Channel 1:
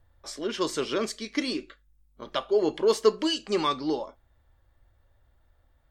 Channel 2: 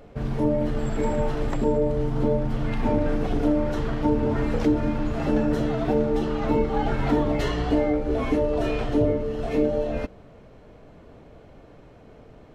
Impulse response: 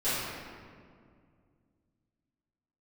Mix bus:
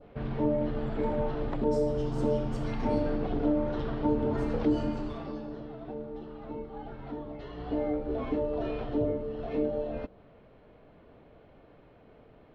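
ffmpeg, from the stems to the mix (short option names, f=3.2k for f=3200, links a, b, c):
-filter_complex "[0:a]acompressor=threshold=-33dB:ratio=6,adelay=1450,volume=-17.5dB,asplit=2[a][b];[b]volume=-7dB[c];[1:a]lowpass=f=3.9k:w=0.5412,lowpass=f=3.9k:w=1.3066,adynamicequalizer=threshold=0.00501:dfrequency=2200:dqfactor=0.95:tfrequency=2200:tqfactor=0.95:attack=5:release=100:ratio=0.375:range=3.5:mode=cutabove:tftype=bell,volume=6dB,afade=t=out:st=4.82:d=0.53:silence=0.251189,afade=t=in:st=7.48:d=0.39:silence=0.334965[d];[2:a]atrim=start_sample=2205[e];[c][e]afir=irnorm=-1:irlink=0[f];[a][d][f]amix=inputs=3:normalize=0,lowshelf=f=170:g=-5"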